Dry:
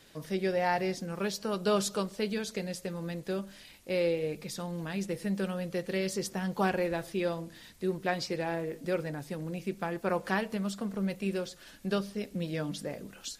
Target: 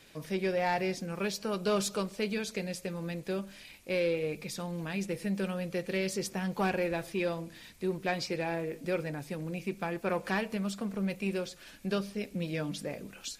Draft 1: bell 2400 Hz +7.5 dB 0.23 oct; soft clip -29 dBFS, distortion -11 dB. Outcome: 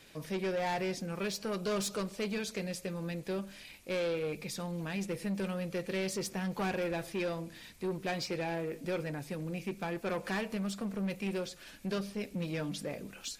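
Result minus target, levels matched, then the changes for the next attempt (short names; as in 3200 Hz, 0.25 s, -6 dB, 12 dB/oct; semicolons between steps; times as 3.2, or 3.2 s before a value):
soft clip: distortion +10 dB
change: soft clip -20.5 dBFS, distortion -21 dB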